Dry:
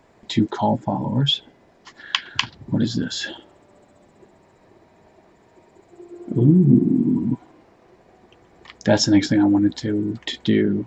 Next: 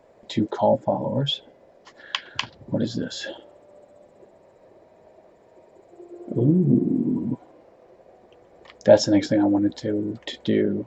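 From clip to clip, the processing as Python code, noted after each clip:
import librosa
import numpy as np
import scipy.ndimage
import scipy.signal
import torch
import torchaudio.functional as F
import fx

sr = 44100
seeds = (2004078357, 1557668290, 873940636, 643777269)

y = fx.peak_eq(x, sr, hz=550.0, db=14.5, octaves=0.7)
y = y * 10.0 ** (-6.0 / 20.0)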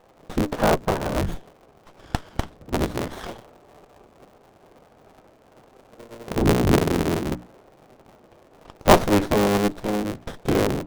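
y = fx.cycle_switch(x, sr, every=3, mode='inverted')
y = fx.hum_notches(y, sr, base_hz=60, count=5)
y = fx.running_max(y, sr, window=17)
y = y * 10.0 ** (1.0 / 20.0)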